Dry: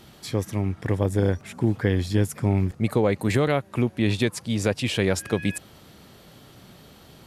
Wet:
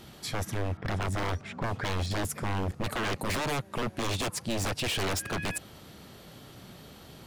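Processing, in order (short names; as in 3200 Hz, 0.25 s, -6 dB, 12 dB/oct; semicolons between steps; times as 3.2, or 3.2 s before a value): 0.77–2.11 low-pass opened by the level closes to 1900 Hz, open at -16 dBFS; wavefolder -25 dBFS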